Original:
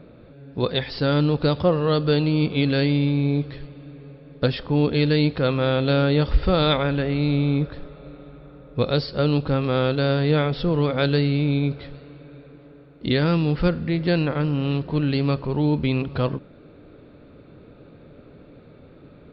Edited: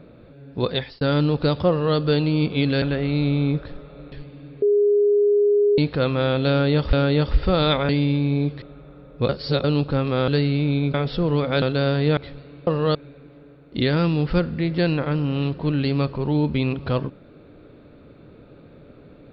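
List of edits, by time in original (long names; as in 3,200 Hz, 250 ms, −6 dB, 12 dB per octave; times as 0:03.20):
0:00.75–0:01.01: fade out
0:01.69–0:01.97: duplicate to 0:12.24
0:02.82–0:03.55: swap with 0:06.89–0:08.19
0:04.05–0:05.21: beep over 411 Hz −14 dBFS
0:05.93–0:06.36: repeat, 2 plays
0:08.86–0:09.21: reverse
0:09.85–0:10.40: swap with 0:11.08–0:11.74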